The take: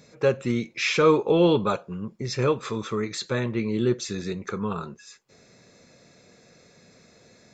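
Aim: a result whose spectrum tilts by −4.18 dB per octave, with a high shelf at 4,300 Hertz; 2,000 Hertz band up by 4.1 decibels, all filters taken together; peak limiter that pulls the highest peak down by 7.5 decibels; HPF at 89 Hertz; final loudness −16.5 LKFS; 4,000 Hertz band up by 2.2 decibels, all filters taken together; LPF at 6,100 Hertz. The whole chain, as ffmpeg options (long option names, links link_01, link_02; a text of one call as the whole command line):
ffmpeg -i in.wav -af "highpass=89,lowpass=6100,equalizer=frequency=2000:width_type=o:gain=5,equalizer=frequency=4000:width_type=o:gain=3.5,highshelf=frequency=4300:gain=-3,volume=10dB,alimiter=limit=-3.5dB:level=0:latency=1" out.wav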